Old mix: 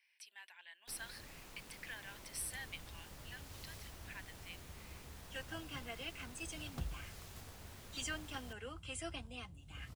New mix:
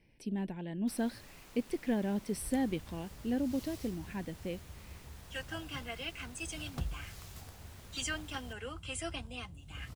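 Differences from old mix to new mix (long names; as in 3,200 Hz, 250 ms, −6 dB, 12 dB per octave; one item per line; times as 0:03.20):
speech: remove high-pass filter 1,300 Hz 24 dB per octave
second sound +5.0 dB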